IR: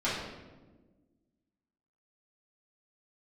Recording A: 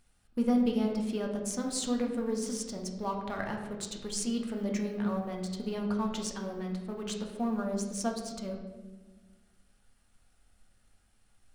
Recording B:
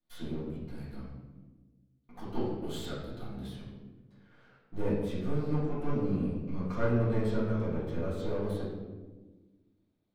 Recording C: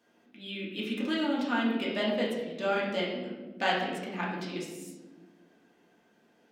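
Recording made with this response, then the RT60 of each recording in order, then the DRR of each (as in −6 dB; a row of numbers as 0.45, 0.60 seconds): B; 1.3, 1.3, 1.3 seconds; 0.5, −11.0, −5.0 decibels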